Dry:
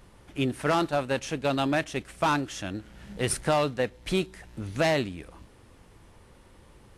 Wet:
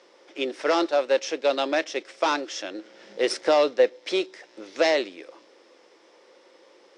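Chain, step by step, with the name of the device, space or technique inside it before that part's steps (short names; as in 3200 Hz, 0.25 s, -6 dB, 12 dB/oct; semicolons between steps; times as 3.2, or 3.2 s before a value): 2.78–3.99 low shelf 360 Hz +6 dB; phone speaker on a table (speaker cabinet 340–7000 Hz, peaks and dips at 340 Hz +6 dB, 530 Hz +9 dB, 2100 Hz +4 dB, 3600 Hz +4 dB, 5300 Hz +10 dB)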